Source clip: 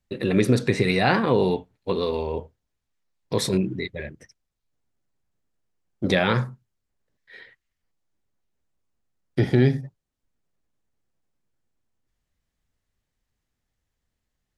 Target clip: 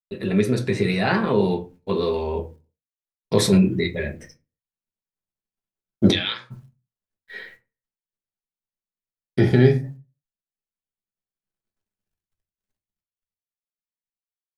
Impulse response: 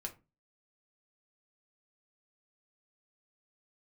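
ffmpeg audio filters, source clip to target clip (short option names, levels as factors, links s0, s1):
-filter_complex "[0:a]acrusher=bits=11:mix=0:aa=0.000001,asplit=3[s0][s1][s2];[s0]afade=t=out:st=6.1:d=0.02[s3];[s1]bandpass=f=3400:t=q:w=3.7:csg=0,afade=t=in:st=6.1:d=0.02,afade=t=out:st=6.5:d=0.02[s4];[s2]afade=t=in:st=6.5:d=0.02[s5];[s3][s4][s5]amix=inputs=3:normalize=0,dynaudnorm=f=280:g=13:m=5.62,agate=range=0.0224:threshold=0.00631:ratio=3:detection=peak[s6];[1:a]atrim=start_sample=2205[s7];[s6][s7]afir=irnorm=-1:irlink=0"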